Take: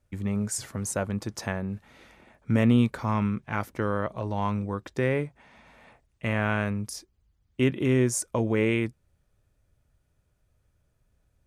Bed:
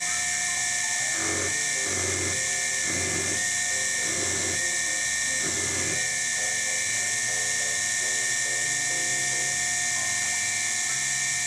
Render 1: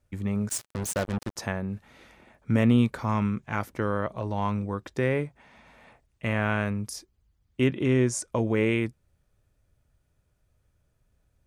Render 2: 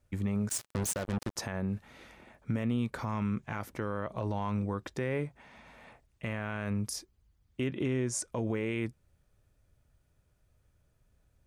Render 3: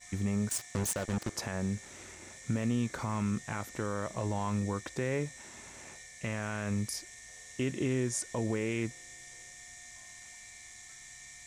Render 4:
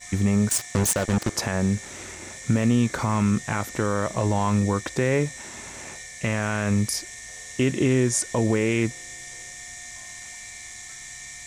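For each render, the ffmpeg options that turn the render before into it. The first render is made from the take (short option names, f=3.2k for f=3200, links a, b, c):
-filter_complex "[0:a]asettb=1/sr,asplit=3[a][b][c];[a]atrim=end=0.494[d];[b]atrim=start=0.49:end=1.36,asetpts=PTS-STARTPTS,afade=t=in:d=0.004:c=qsin,afade=t=out:st=0.866:d=0.004:c=qsin,acrusher=bits=4:mix=0:aa=0.5[e];[c]atrim=start=1.356[f];[d][e]acrossfade=d=0.004:c1=hsin:c2=qsin[g];[g][f]acrossfade=d=0.004:c1=qsin:c2=hsin,asettb=1/sr,asplit=3[h][i][j];[h]atrim=end=3.094[k];[i]atrim=start=3.09:end=3.59,asetpts=PTS-STARTPTS,afade=t=in:d=0.004:c=qsin,afade=t=out:st=0.496:d=0.004:c=qsin,equalizer=f=6.9k:w=4:g=8.5[l];[j]atrim=start=3.586[m];[k][l]acrossfade=d=0.004:c1=hsin:c2=qsin[n];[n][m]acrossfade=d=0.004:c1=qsin:c2=hsin,asettb=1/sr,asplit=3[o][p][q];[o]atrim=end=7.674[r];[p]atrim=start=7.67:end=8.31,asetpts=PTS-STARTPTS,afade=t=in:d=0.004:c=qsin,afade=t=out:st=0.636:d=0.004:c=qsin,lowpass=8.2k[s];[q]atrim=start=8.306[t];[r][s]acrossfade=d=0.004:c1=hsin:c2=qsin[u];[u][t]acrossfade=d=0.004:c1=qsin:c2=hsin"
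-af "acompressor=threshold=-25dB:ratio=6,alimiter=limit=-22dB:level=0:latency=1:release=66"
-filter_complex "[1:a]volume=-24dB[a];[0:a][a]amix=inputs=2:normalize=0"
-af "volume=10.5dB"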